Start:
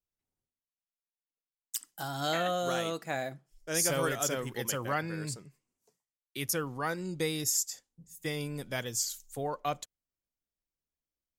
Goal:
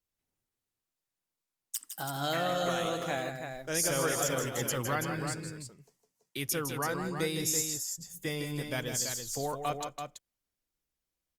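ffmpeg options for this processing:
ffmpeg -i in.wav -filter_complex "[0:a]asplit=2[link_01][link_02];[link_02]acompressor=threshold=-41dB:ratio=6,volume=1dB[link_03];[link_01][link_03]amix=inputs=2:normalize=0,aecho=1:1:158|174|332:0.422|0.119|0.447,volume=-3dB" -ar 48000 -c:a libopus -b:a 48k out.opus

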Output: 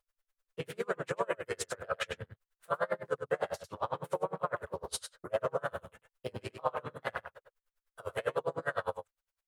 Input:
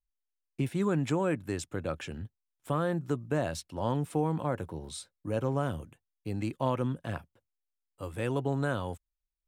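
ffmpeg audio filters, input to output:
ffmpeg -i in.wav -filter_complex "[0:a]bandreject=frequency=720:width=12,asplit=3[link_01][link_02][link_03];[link_02]asetrate=35002,aresample=44100,atempo=1.25992,volume=-10dB[link_04];[link_03]asetrate=52444,aresample=44100,atempo=0.840896,volume=-2dB[link_05];[link_01][link_04][link_05]amix=inputs=3:normalize=0,equalizer=frequency=1400:width_type=o:width=1.2:gain=9,asplit=2[link_06][link_07];[link_07]alimiter=limit=-24dB:level=0:latency=1:release=17,volume=-1dB[link_08];[link_06][link_08]amix=inputs=2:normalize=0,acompressor=threshold=-34dB:ratio=2.5,lowshelf=frequency=380:width_type=q:width=3:gain=-8.5,asplit=2[link_09][link_10];[link_10]adelay=99.13,volume=-7dB,highshelf=frequency=4000:gain=-2.23[link_11];[link_09][link_11]amix=inputs=2:normalize=0,aeval=exprs='val(0)*pow(10,-33*(0.5-0.5*cos(2*PI*9.9*n/s))/20)':channel_layout=same,volume=3dB" out.wav

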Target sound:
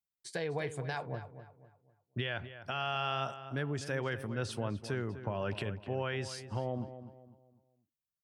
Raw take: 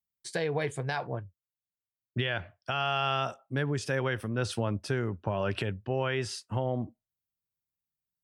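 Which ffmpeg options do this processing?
ffmpeg -i in.wav -filter_complex "[0:a]asplit=2[link_01][link_02];[link_02]adelay=251,lowpass=frequency=2400:poles=1,volume=-11.5dB,asplit=2[link_03][link_04];[link_04]adelay=251,lowpass=frequency=2400:poles=1,volume=0.36,asplit=2[link_05][link_06];[link_06]adelay=251,lowpass=frequency=2400:poles=1,volume=0.36,asplit=2[link_07][link_08];[link_08]adelay=251,lowpass=frequency=2400:poles=1,volume=0.36[link_09];[link_01][link_03][link_05][link_07][link_09]amix=inputs=5:normalize=0,volume=-5.5dB" out.wav

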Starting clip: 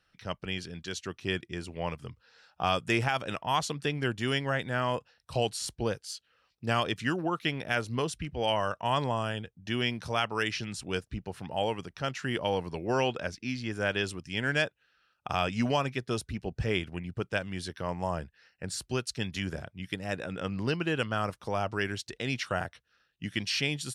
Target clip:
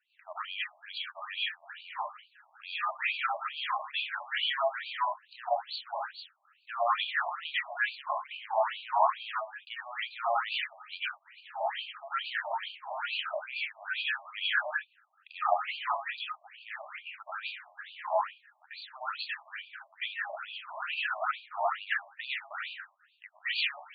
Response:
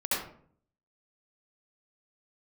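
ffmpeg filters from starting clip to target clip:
-filter_complex "[0:a]highpass=frequency=360:width=0.5412,highpass=frequency=360:width=1.3066,volume=26dB,asoftclip=hard,volume=-26dB[link_01];[1:a]atrim=start_sample=2205,atrim=end_sample=6174,asetrate=31752,aresample=44100[link_02];[link_01][link_02]afir=irnorm=-1:irlink=0,afftfilt=real='re*between(b*sr/1024,810*pow(3400/810,0.5+0.5*sin(2*PI*2.3*pts/sr))/1.41,810*pow(3400/810,0.5+0.5*sin(2*PI*2.3*pts/sr))*1.41)':imag='im*between(b*sr/1024,810*pow(3400/810,0.5+0.5*sin(2*PI*2.3*pts/sr))/1.41,810*pow(3400/810,0.5+0.5*sin(2*PI*2.3*pts/sr))*1.41)':win_size=1024:overlap=0.75,volume=-2.5dB"

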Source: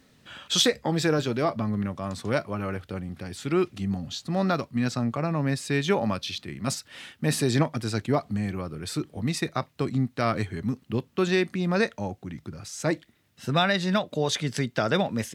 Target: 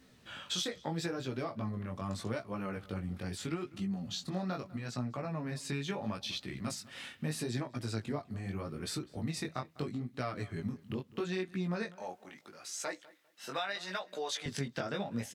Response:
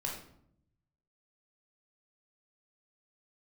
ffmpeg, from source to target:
-filter_complex "[0:a]asettb=1/sr,asplit=3[link_01][link_02][link_03];[link_01]atrim=end=11.914[link_04];[link_02]atrim=start=11.91:end=14.46,asetpts=PTS-STARTPTS,afade=type=in:duration=0.004:curve=qsin,afade=type=out:start_time=2.546:duration=0.004:curve=qsin,highpass=580[link_05];[link_03]atrim=start=14.456[link_06];[link_04][link_05]acrossfade=duration=0.004:curve1=hsin:curve2=qsin[link_07];[link_07][link_06]acrossfade=duration=0.004:curve1=qsin:curve2=hsin,acompressor=threshold=-31dB:ratio=5,flanger=delay=15.5:depth=6.6:speed=0.78,asplit=2[link_08][link_09];[link_09]adelay=200,lowpass=frequency=2900:poles=1,volume=-20dB,asplit=2[link_10][link_11];[link_11]adelay=200,lowpass=frequency=2900:poles=1,volume=0.23[link_12];[link_08][link_10][link_12]amix=inputs=3:normalize=0"

